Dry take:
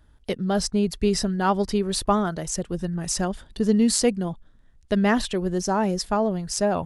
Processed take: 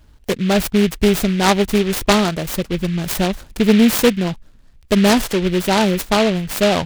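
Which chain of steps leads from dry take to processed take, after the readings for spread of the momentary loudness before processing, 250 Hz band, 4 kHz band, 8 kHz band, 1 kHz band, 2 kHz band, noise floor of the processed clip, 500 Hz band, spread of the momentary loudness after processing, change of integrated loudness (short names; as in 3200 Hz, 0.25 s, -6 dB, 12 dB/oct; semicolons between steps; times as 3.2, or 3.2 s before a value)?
9 LU, +7.0 dB, +9.5 dB, +2.5 dB, +5.5 dB, +10.5 dB, -48 dBFS, +7.0 dB, 8 LU, +7.0 dB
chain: self-modulated delay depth 0.27 ms; noise-modulated delay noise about 2400 Hz, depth 0.1 ms; gain +7.5 dB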